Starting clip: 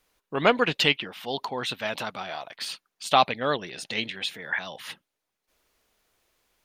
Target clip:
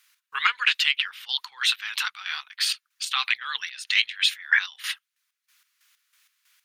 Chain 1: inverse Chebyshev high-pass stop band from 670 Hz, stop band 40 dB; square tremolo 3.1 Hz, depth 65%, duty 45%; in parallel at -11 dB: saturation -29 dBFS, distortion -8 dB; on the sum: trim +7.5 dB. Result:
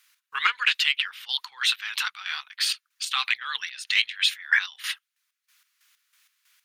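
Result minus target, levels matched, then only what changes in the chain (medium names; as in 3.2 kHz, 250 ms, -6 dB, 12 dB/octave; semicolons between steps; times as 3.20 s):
saturation: distortion +11 dB
change: saturation -18.5 dBFS, distortion -19 dB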